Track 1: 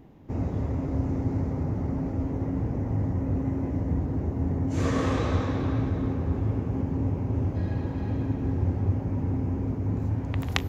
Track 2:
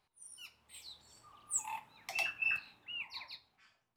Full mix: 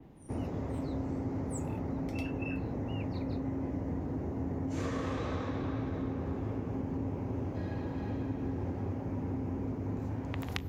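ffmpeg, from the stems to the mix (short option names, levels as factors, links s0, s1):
-filter_complex "[0:a]volume=0.75[s0];[1:a]volume=0.355[s1];[s0][s1]amix=inputs=2:normalize=0,adynamicequalizer=threshold=0.00141:dfrequency=7900:dqfactor=0.75:tfrequency=7900:tqfactor=0.75:attack=5:release=100:ratio=0.375:range=2:mode=cutabove:tftype=bell,acrossover=split=110|230[s2][s3][s4];[s2]acompressor=threshold=0.00708:ratio=4[s5];[s3]acompressor=threshold=0.00794:ratio=4[s6];[s4]acompressor=threshold=0.0178:ratio=4[s7];[s5][s6][s7]amix=inputs=3:normalize=0"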